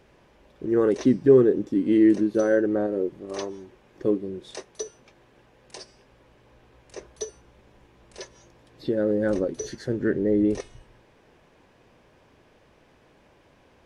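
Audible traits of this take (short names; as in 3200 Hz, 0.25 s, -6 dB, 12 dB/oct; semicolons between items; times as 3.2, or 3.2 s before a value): noise floor -59 dBFS; spectral tilt -6.0 dB/oct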